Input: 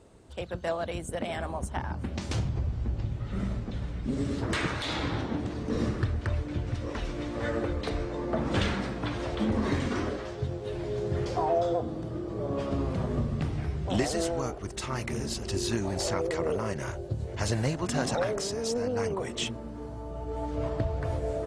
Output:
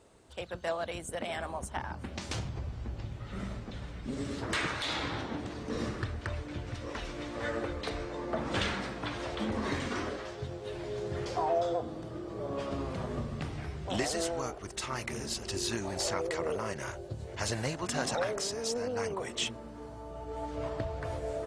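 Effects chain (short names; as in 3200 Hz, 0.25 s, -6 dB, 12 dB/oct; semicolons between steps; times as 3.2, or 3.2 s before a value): low shelf 450 Hz -8.5 dB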